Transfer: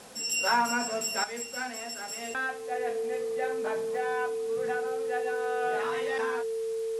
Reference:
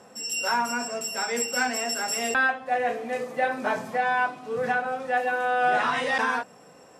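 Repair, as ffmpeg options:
ffmpeg -i in.wav -af "adeclick=threshold=4,bandreject=frequency=450:width=30,afwtdn=0.0028,asetnsamples=nb_out_samples=441:pad=0,asendcmd='1.24 volume volume 9.5dB',volume=0dB" out.wav

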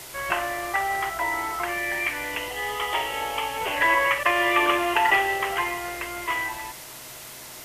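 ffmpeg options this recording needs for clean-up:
ffmpeg -i in.wav -af "adeclick=threshold=4,bandreject=frequency=131.7:width_type=h:width=4,bandreject=frequency=263.4:width_type=h:width=4,bandreject=frequency=395.1:width_type=h:width=4,bandreject=frequency=526.8:width_type=h:width=4,bandreject=frequency=658.5:width_type=h:width=4,bandreject=frequency=620:width=30,afftdn=noise_reduction=29:noise_floor=-41" out.wav

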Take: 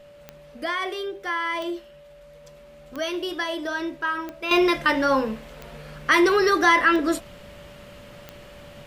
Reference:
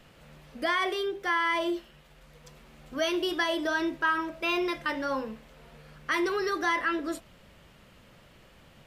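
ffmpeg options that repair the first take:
ffmpeg -i in.wav -af "adeclick=threshold=4,bandreject=frequency=580:width=30,asetnsamples=nb_out_samples=441:pad=0,asendcmd='4.51 volume volume -10dB',volume=0dB" out.wav

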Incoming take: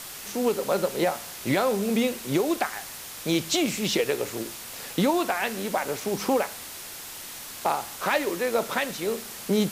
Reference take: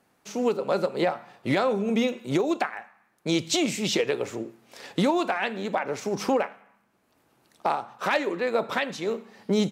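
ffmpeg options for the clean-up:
ffmpeg -i in.wav -af "adeclick=threshold=4,afwtdn=0.013" out.wav

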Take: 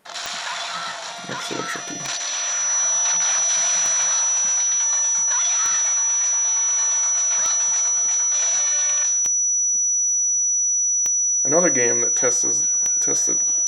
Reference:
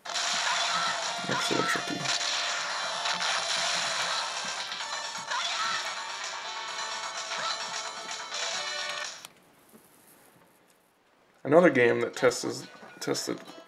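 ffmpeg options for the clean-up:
ffmpeg -i in.wav -af "adeclick=threshold=4,bandreject=frequency=5900:width=30" out.wav

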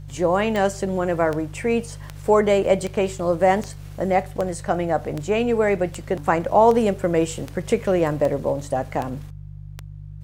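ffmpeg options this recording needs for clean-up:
ffmpeg -i in.wav -af "adeclick=threshold=4,bandreject=frequency=49.5:width_type=h:width=4,bandreject=frequency=99:width_type=h:width=4,bandreject=frequency=148.5:width_type=h:width=4,agate=range=-21dB:threshold=-29dB" out.wav

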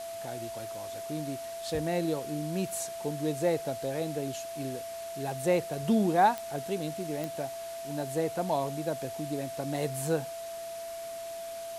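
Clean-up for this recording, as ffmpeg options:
ffmpeg -i in.wav -af "adeclick=threshold=4,bandreject=frequency=670:width=30,afwtdn=0.0045" out.wav

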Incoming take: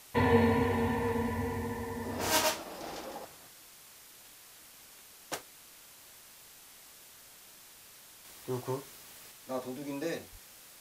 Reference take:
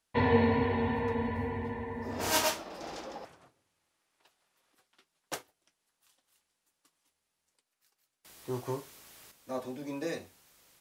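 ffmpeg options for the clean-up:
ffmpeg -i in.wav -filter_complex "[0:a]asplit=3[link_01][link_02][link_03];[link_01]afade=type=out:start_time=10.31:duration=0.02[link_04];[link_02]highpass=frequency=140:width=0.5412,highpass=frequency=140:width=1.3066,afade=type=in:start_time=10.31:duration=0.02,afade=type=out:start_time=10.43:duration=0.02[link_05];[link_03]afade=type=in:start_time=10.43:duration=0.02[link_06];[link_04][link_05][link_06]amix=inputs=3:normalize=0,afwtdn=0.0022" out.wav

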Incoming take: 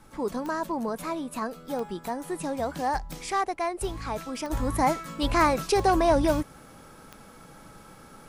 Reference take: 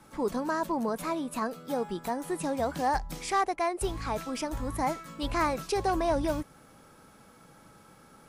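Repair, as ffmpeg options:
ffmpeg -i in.wav -af "adeclick=threshold=4,agate=range=-21dB:threshold=-41dB,asetnsamples=nb_out_samples=441:pad=0,asendcmd='4.5 volume volume -6dB',volume=0dB" out.wav

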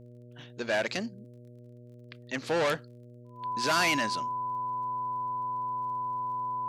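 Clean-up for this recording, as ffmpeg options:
ffmpeg -i in.wav -af "adeclick=threshold=4,bandreject=frequency=121.2:width_type=h:width=4,bandreject=frequency=242.4:width_type=h:width=4,bandreject=frequency=363.6:width_type=h:width=4,bandreject=frequency=484.8:width_type=h:width=4,bandreject=frequency=606:width_type=h:width=4,bandreject=frequency=1000:width=30" out.wav

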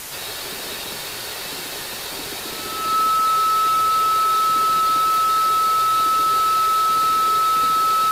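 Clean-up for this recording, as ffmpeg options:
ffmpeg -i in.wav -af "bandreject=frequency=1300:width=30,afwtdn=0.025" out.wav

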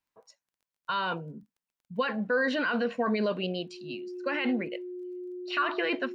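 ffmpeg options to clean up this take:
ffmpeg -i in.wav -af "adeclick=threshold=4,bandreject=frequency=360:width=30" out.wav

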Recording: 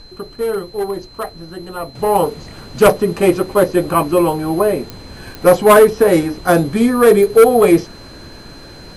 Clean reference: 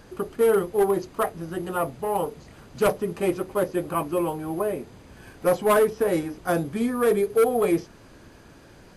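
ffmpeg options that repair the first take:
ffmpeg -i in.wav -af "adeclick=threshold=4,bandreject=frequency=4100:width=30,agate=range=-21dB:threshold=-28dB,asetnsamples=nb_out_samples=441:pad=0,asendcmd='1.95 volume volume -11.5dB',volume=0dB" out.wav

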